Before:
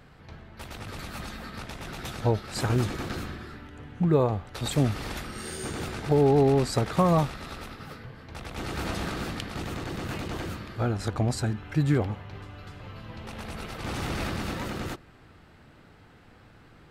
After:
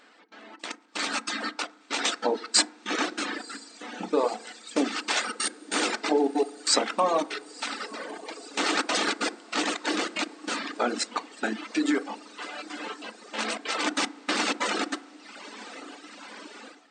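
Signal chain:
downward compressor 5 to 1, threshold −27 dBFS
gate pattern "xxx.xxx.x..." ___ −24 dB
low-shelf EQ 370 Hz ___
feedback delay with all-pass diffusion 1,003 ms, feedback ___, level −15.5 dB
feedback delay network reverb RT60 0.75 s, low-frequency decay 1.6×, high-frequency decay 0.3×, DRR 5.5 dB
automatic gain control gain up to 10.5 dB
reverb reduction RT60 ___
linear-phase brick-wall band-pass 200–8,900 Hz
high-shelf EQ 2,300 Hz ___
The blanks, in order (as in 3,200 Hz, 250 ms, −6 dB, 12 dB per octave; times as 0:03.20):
189 BPM, −8.5 dB, 78%, 1.6 s, +6 dB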